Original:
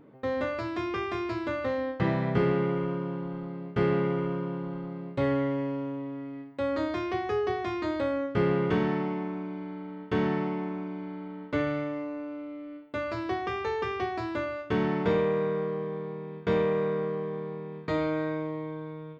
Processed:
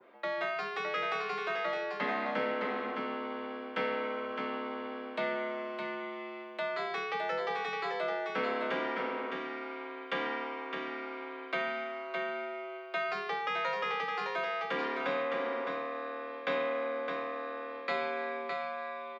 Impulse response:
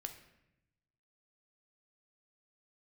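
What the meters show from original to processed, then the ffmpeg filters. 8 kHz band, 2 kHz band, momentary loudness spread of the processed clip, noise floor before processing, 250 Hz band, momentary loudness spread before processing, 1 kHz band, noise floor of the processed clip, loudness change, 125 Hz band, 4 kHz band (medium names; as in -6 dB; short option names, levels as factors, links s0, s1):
no reading, +2.5 dB, 7 LU, -42 dBFS, -13.0 dB, 11 LU, +0.5 dB, -43 dBFS, -4.5 dB, -24.5 dB, +2.5 dB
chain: -filter_complex "[0:a]acrossover=split=200[s0][s1];[s1]acompressor=threshold=0.0126:ratio=1.5[s2];[s0][s2]amix=inputs=2:normalize=0,afreqshift=82,acrossover=split=550 3600:gain=0.2 1 0.0708[s3][s4][s5];[s3][s4][s5]amix=inputs=3:normalize=0,asplit=2[s6][s7];[s7]aecho=0:1:612:0.562[s8];[s6][s8]amix=inputs=2:normalize=0,crystalizer=i=7:c=0,adynamicequalizer=threshold=0.00562:dfrequency=3000:dqfactor=1:tfrequency=3000:tqfactor=1:attack=5:release=100:ratio=0.375:range=1.5:mode=cutabove:tftype=bell"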